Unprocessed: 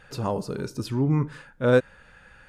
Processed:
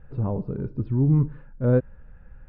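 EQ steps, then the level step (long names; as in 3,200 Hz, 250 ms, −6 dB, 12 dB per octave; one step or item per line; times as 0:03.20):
Gaussian smoothing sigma 3 samples
spectral tilt −4.5 dB per octave
−8.0 dB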